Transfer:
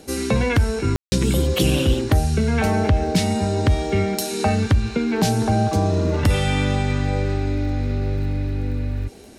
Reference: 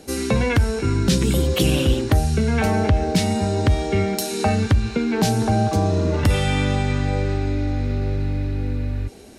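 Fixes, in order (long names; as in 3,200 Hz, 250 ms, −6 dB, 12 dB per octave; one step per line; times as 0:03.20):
click removal
ambience match 0:00.96–0:01.12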